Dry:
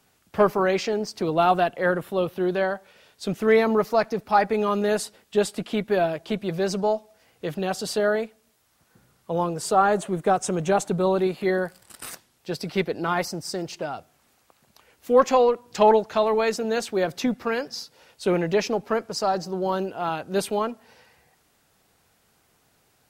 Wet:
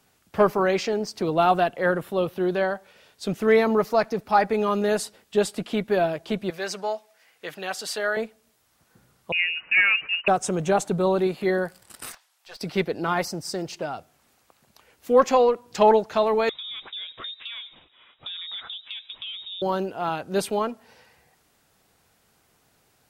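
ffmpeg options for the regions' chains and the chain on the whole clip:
-filter_complex "[0:a]asettb=1/sr,asplit=3[s0][s1][s2];[s0]atrim=end=6.504[s3];[s1]atrim=start=6.5:end=8.17,asetpts=PTS-STARTPTS,afade=t=in:d=0.004:c=qsin,afade=t=out:st=1.666:d=0.004:c=qsin,highpass=f=990:p=1,equalizer=f=1900:w=1.4:g=5.5[s4];[s2]atrim=start=8.166[s5];[s3][s4]acrossfade=d=0.004:c1=hsin:c2=qsin[s6];[s6][s5]acrossfade=d=0.004:c1=qsin:c2=hsin,asettb=1/sr,asplit=3[s7][s8][s9];[s7]atrim=end=9.324[s10];[s8]atrim=start=9.32:end=10.28,asetpts=PTS-STARTPTS,afade=t=in:d=0.004:c=qsin,afade=t=out:st=0.956:d=0.004:c=qsin,volume=4.22,asoftclip=hard,volume=0.237,lowpass=f=2600:t=q:w=0.5098,lowpass=f=2600:t=q:w=0.6013,lowpass=f=2600:t=q:w=0.9,lowpass=f=2600:t=q:w=2.563,afreqshift=-3000[s11];[s9]atrim=start=10.276[s12];[s10][s11]acrossfade=d=0.004:c1=hsin:c2=qsin[s13];[s13][s12]acrossfade=d=0.004:c1=qsin:c2=hsin,asettb=1/sr,asplit=3[s14][s15][s16];[s14]atrim=end=12.124[s17];[s15]atrim=start=12.12:end=12.61,asetpts=PTS-STARTPTS,afade=t=in:d=0.004:c=qsin,afade=t=out:st=0.486:d=0.004:c=qsin,highpass=f=710:w=0.5412,highpass=f=710:w=1.3066,acrossover=split=5500[s18][s19];[s19]acompressor=threshold=0.00178:ratio=4:attack=1:release=60[s20];[s18][s20]amix=inputs=2:normalize=0,aeval=exprs='(tanh(63.1*val(0)+0.4)-tanh(0.4))/63.1':c=same[s21];[s16]atrim=start=12.606[s22];[s17][s21]acrossfade=d=0.004:c1=hsin:c2=qsin[s23];[s23][s22]acrossfade=d=0.004:c1=qsin:c2=hsin,asettb=1/sr,asplit=3[s24][s25][s26];[s24]atrim=end=16.494[s27];[s25]atrim=start=16.49:end=19.62,asetpts=PTS-STARTPTS,afade=t=in:d=0.004:c=qsin,afade=t=out:st=3.126:d=0.004:c=qsin,lowpass=f=3300:t=q:w=0.5098,lowpass=f=3300:t=q:w=0.6013,lowpass=f=3300:t=q:w=0.9,lowpass=f=3300:t=q:w=2.563,afreqshift=-3900,acompressor=threshold=0.0224:ratio=6:attack=3.2:release=140:knee=1:detection=peak[s28];[s26]atrim=start=19.616[s29];[s27][s28]acrossfade=d=0.004:c1=hsin:c2=qsin[s30];[s30][s29]acrossfade=d=0.004:c1=qsin:c2=hsin"

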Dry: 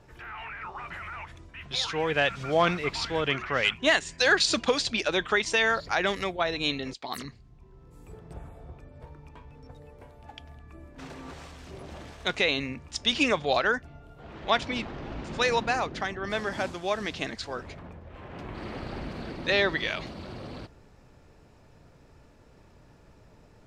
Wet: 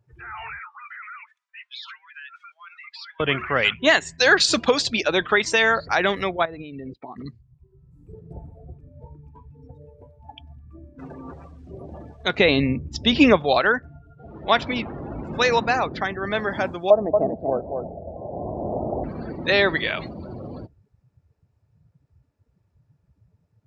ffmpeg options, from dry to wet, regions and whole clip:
-filter_complex "[0:a]asettb=1/sr,asplit=3[s0][s1][s2];[s0]atrim=end=0.594[s3];[s1]atrim=start=0.59:end=3.2,asetpts=PTS-STARTPTS,afade=t=in:d=0.004:c=qsin,afade=t=out:st=2.606:d=0.004:c=qsin,highshelf=f=4800:g=-4.5,acompressor=threshold=0.0158:ratio=8:attack=3.2:release=140:knee=1:detection=peak,highpass=f=1200:w=0.5412,highpass=f=1200:w=1.3066[s4];[s2]atrim=start=3.196[s5];[s3][s4]acrossfade=d=0.004:c1=hsin:c2=qsin[s6];[s6][s5]acrossfade=d=0.004:c1=qsin:c2=hsin,asettb=1/sr,asplit=3[s7][s8][s9];[s7]atrim=end=6.454[s10];[s8]atrim=start=6.45:end=7.26,asetpts=PTS-STARTPTS,afade=t=in:d=0.004:c=qsin,afade=t=out:st=0.806:d=0.004:c=qsin,lowpass=2700,acompressor=threshold=0.0112:ratio=12:attack=3.2:release=140:knee=1:detection=peak,lowshelf=f=340:g=6[s11];[s9]atrim=start=7.256[s12];[s10][s11]acrossfade=d=0.004:c1=hsin:c2=qsin[s13];[s13][s12]acrossfade=d=0.004:c1=qsin:c2=hsin,asettb=1/sr,asplit=3[s14][s15][s16];[s14]atrim=end=12.384[s17];[s15]atrim=start=12.38:end=13.37,asetpts=PTS-STARTPTS,afade=t=in:d=0.004:c=qsin,afade=t=out:st=0.986:d=0.004:c=qsin,acrossover=split=5300[s18][s19];[s19]acompressor=threshold=0.00631:ratio=4:attack=1:release=60[s20];[s18][s20]amix=inputs=2:normalize=0,lowshelf=f=470:g=9.5[s21];[s16]atrim=start=13.366[s22];[s17][s21]acrossfade=d=0.004:c1=hsin:c2=qsin[s23];[s23][s22]acrossfade=d=0.004:c1=qsin:c2=hsin,asettb=1/sr,asplit=3[s24][s25][s26];[s24]atrim=end=16.904[s27];[s25]atrim=start=16.9:end=19.04,asetpts=PTS-STARTPTS,afade=t=in:d=0.004:c=qsin,afade=t=out:st=2.136:d=0.004:c=qsin,lowpass=f=660:t=q:w=3.6,aecho=1:1:232:0.562,atrim=end_sample=94374[s28];[s26]atrim=start=19.036[s29];[s27][s28]acrossfade=d=0.004:c1=hsin:c2=qsin[s30];[s30][s29]acrossfade=d=0.004:c1=qsin:c2=hsin,highpass=58,afftdn=nr=26:nf=-41,equalizer=f=3100:t=o:w=0.77:g=-2,volume=2"

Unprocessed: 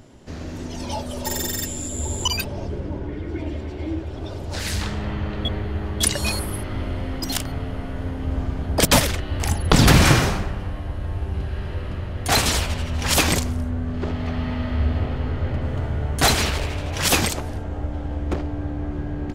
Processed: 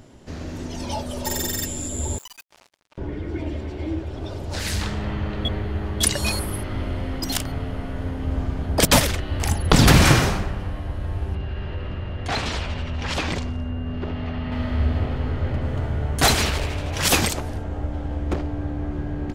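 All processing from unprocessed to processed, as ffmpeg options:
-filter_complex "[0:a]asettb=1/sr,asplit=3[s0][s1][s2];[s0]atrim=end=2.184[s3];[s1]atrim=start=2.18:end=2.98,asetpts=PTS-STARTPTS,afade=t=in:d=0.004:c=qsin,afade=t=out:st=0.796:d=0.004:c=qsin,highpass=f=820:w=0.5412,highpass=f=820:w=1.3066,acompressor=threshold=0.01:ratio=5:attack=3.2:release=140:knee=1:detection=peak,acrusher=bits=5:mix=0:aa=0.5[s4];[s2]atrim=start=2.976[s5];[s3][s4]acrossfade=d=0.004:c1=hsin:c2=qsin[s6];[s6][s5]acrossfade=d=0.004:c1=qsin:c2=hsin,asettb=1/sr,asplit=3[s7][s8][s9];[s7]atrim=end=11.354[s10];[s8]atrim=start=11.35:end=14.52,asetpts=PTS-STARTPTS,afade=t=in:d=0.004:c=qsin,afade=t=out:st=3.166:d=0.004:c=qsin,lowpass=4000,acompressor=threshold=0.0562:ratio=2:attack=3.2:release=140:knee=1:detection=peak,aeval=exprs='val(0)+0.00355*sin(2*PI*2800*n/s)':c=same[s11];[s9]atrim=start=14.516[s12];[s10][s11]acrossfade=d=0.004:c1=hsin:c2=qsin[s13];[s13][s12]acrossfade=d=0.004:c1=qsin:c2=hsin"

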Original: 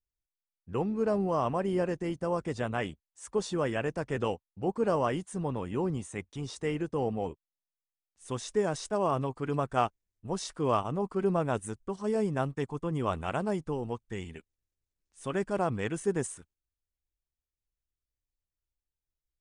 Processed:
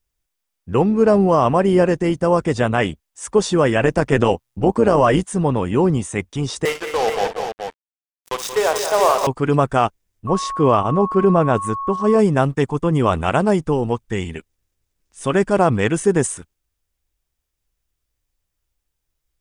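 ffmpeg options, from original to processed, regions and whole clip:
-filter_complex "[0:a]asettb=1/sr,asplit=3[s0][s1][s2];[s0]atrim=end=3.794[s3];[s1]atrim=start=3.79:end=5.24,asetpts=PTS-STARTPTS,afade=t=in:d=0.004:c=qsin,afade=t=out:st=1.446:d=0.004:c=qsin,acontrast=29,tremolo=f=120:d=0.621[s4];[s2]atrim=start=5.236[s5];[s3][s4]acrossfade=d=0.004:c1=hsin:c2=qsin[s6];[s6][s5]acrossfade=d=0.004:c1=qsin:c2=hsin,asettb=1/sr,asplit=3[s7][s8][s9];[s7]atrim=end=6.654[s10];[s8]atrim=start=6.65:end=9.27,asetpts=PTS-STARTPTS,afade=t=in:d=0.004:c=qsin,afade=t=out:st=2.616:d=0.004:c=qsin,highpass=f=480:w=0.5412,highpass=f=480:w=1.3066,acrusher=bits=5:mix=0:aa=0.5,aecho=1:1:57|179|218|425:0.251|0.316|0.299|0.447,atrim=end_sample=115542[s11];[s9]atrim=start=9.266[s12];[s10][s11]acrossfade=d=0.004:c1=hsin:c2=qsin[s13];[s13][s12]acrossfade=d=0.004:c1=qsin:c2=hsin,asettb=1/sr,asplit=3[s14][s15][s16];[s14]atrim=end=10.274[s17];[s15]atrim=start=10.27:end=12.19,asetpts=PTS-STARTPTS,afade=t=in:d=0.004:c=qsin,afade=t=out:st=1.916:d=0.004:c=qsin,highshelf=f=4100:g=-9,aeval=exprs='val(0)+0.0126*sin(2*PI*1100*n/s)':c=same[s18];[s16]atrim=start=12.186[s19];[s17][s18]acrossfade=d=0.004:c1=hsin:c2=qsin[s20];[s20][s19]acrossfade=d=0.004:c1=qsin:c2=hsin,bandreject=f=4200:w=21,alimiter=level_in=7.94:limit=0.891:release=50:level=0:latency=1,volume=0.668"

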